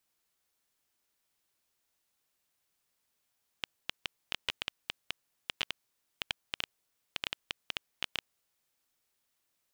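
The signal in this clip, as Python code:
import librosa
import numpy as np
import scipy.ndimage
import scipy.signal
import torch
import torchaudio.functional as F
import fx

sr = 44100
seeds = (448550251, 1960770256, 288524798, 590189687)

y = fx.geiger_clicks(sr, seeds[0], length_s=4.92, per_s=7.0, level_db=-14.0)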